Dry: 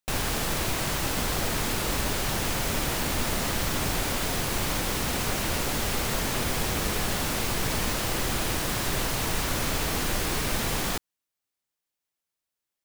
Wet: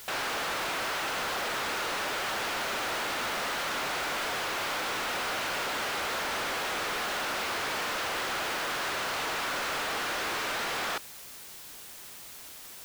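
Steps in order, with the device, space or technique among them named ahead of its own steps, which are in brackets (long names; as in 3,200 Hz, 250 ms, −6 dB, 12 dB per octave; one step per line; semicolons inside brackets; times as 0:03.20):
drive-through speaker (band-pass filter 530–3,600 Hz; parametric band 1,400 Hz +4 dB 0.37 octaves; hard clipping −34.5 dBFS, distortion −8 dB; white noise bed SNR 13 dB)
level +4.5 dB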